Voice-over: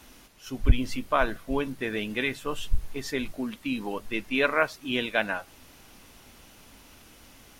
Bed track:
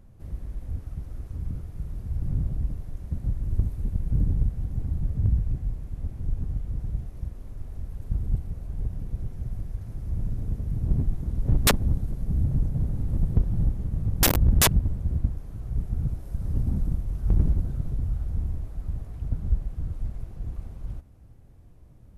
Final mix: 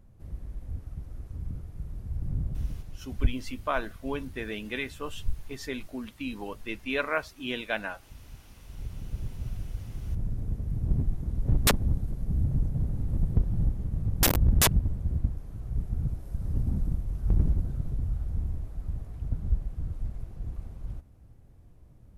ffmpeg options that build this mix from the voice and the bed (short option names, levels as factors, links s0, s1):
-filter_complex "[0:a]adelay=2550,volume=0.562[s0];[1:a]volume=5.31,afade=t=out:st=2.77:d=0.58:silence=0.141254,afade=t=in:st=8.51:d=0.71:silence=0.11885[s1];[s0][s1]amix=inputs=2:normalize=0"